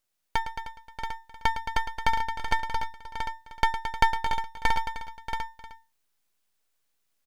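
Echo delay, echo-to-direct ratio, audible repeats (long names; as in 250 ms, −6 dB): 109 ms, −2.5 dB, 11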